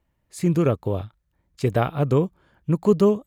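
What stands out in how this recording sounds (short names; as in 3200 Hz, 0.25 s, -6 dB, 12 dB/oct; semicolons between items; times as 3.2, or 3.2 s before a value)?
noise floor -72 dBFS; spectral tilt -7.5 dB/oct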